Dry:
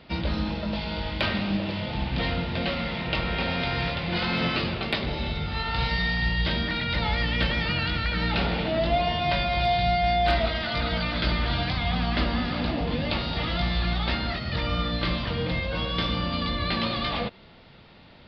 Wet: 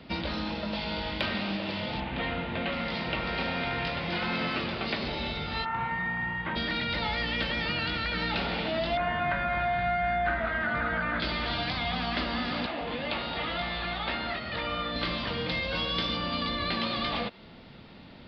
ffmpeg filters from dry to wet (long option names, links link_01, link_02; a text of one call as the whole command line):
ffmpeg -i in.wav -filter_complex "[0:a]asettb=1/sr,asplit=3[link_01][link_02][link_03];[link_01]atrim=end=2.004[link_04];[link_02]atrim=start=2:end=5.08,asetpts=PTS-STARTPTS,afade=type=in:duration=0.004:curve=qsin,afade=type=out:start_time=3.076:duration=0.004:curve=qsin,acrossover=split=3500[link_05][link_06];[link_06]adelay=720[link_07];[link_05][link_07]amix=inputs=2:normalize=0,atrim=end_sample=135828[link_08];[link_03]atrim=start=5.076[link_09];[link_04][link_08]acrossfade=duration=0.004:curve1=hsin:curve2=qsin[link_10];[link_10][link_09]acrossfade=duration=0.004:curve1=qsin:curve2=hsin,asplit=3[link_11][link_12][link_13];[link_11]afade=type=out:start_time=5.64:duration=0.02[link_14];[link_12]highpass=170,equalizer=frequency=180:width_type=q:width=4:gain=-5,equalizer=frequency=260:width_type=q:width=4:gain=-8,equalizer=frequency=430:width_type=q:width=4:gain=-10,equalizer=frequency=620:width_type=q:width=4:gain=-8,equalizer=frequency=1000:width_type=q:width=4:gain=6,lowpass=frequency=2000:width=0.5412,lowpass=frequency=2000:width=1.3066,afade=type=in:start_time=5.64:duration=0.02,afade=type=out:start_time=6.55:duration=0.02[link_15];[link_13]afade=type=in:start_time=6.55:duration=0.02[link_16];[link_14][link_15][link_16]amix=inputs=3:normalize=0,asettb=1/sr,asplit=3[link_17][link_18][link_19];[link_17]atrim=end=8.974[link_20];[link_18]atrim=start=8.97:end=11.2,asetpts=PTS-STARTPTS,afade=type=in:duration=0.004:curve=qsin,afade=type=out:start_time=2.226:duration=0.004:curve=qsin,lowpass=frequency=1600:width_type=q:width=3.8[link_21];[link_19]atrim=start=11.196[link_22];[link_20][link_21]acrossfade=duration=0.004:curve1=hsin:curve2=qsin[link_23];[link_23][link_22]acrossfade=duration=0.004:curve1=qsin:curve2=hsin,asettb=1/sr,asplit=3[link_24][link_25][link_26];[link_24]atrim=end=12.664[link_27];[link_25]atrim=start=12.66:end=14.96,asetpts=PTS-STARTPTS,afade=type=in:duration=0.004:curve=qsin,afade=type=out:start_time=2.296:duration=0.004:curve=qsin,acrossover=split=410 4100:gain=0.224 1 0.0891[link_28][link_29][link_30];[link_28][link_29][link_30]amix=inputs=3:normalize=0[link_31];[link_26]atrim=start=14.956[link_32];[link_27][link_31]acrossfade=duration=0.004:curve1=hsin:curve2=qsin[link_33];[link_33][link_32]acrossfade=duration=0.004:curve1=qsin:curve2=hsin,asettb=1/sr,asplit=3[link_34][link_35][link_36];[link_34]atrim=end=15.494[link_37];[link_35]atrim=start=15.49:end=16.17,asetpts=PTS-STARTPTS,afade=type=in:duration=0.004:curve=qsin,afade=type=out:start_time=0.676:duration=0.004:curve=qsin,highshelf=frequency=3300:gain=7.5[link_38];[link_36]atrim=start=16.166[link_39];[link_37][link_38]acrossfade=duration=0.004:curve1=hsin:curve2=qsin[link_40];[link_40][link_39]acrossfade=duration=0.004:curve1=qsin:curve2=hsin,equalizer=frequency=240:width=1.3:gain=6,acrossover=split=370|760[link_41][link_42][link_43];[link_41]acompressor=threshold=-37dB:ratio=4[link_44];[link_42]acompressor=threshold=-38dB:ratio=4[link_45];[link_43]acompressor=threshold=-29dB:ratio=4[link_46];[link_44][link_45][link_46]amix=inputs=3:normalize=0" out.wav